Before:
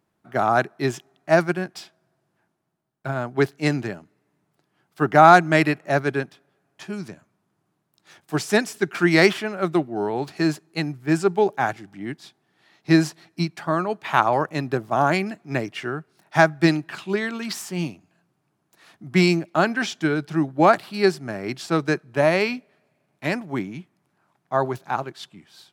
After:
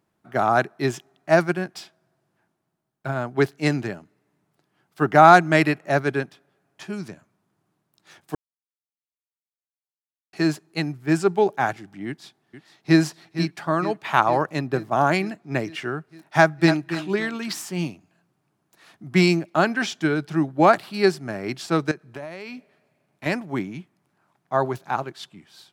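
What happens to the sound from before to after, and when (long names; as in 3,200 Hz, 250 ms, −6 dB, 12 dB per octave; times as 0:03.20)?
0:08.35–0:10.33: silence
0:12.07–0:12.99: delay throw 460 ms, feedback 70%, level −12.5 dB
0:14.59–0:15.63: one half of a high-frequency compander decoder only
0:16.39–0:16.95: delay throw 280 ms, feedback 25%, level −11 dB
0:21.91–0:23.26: downward compressor 12 to 1, threshold −31 dBFS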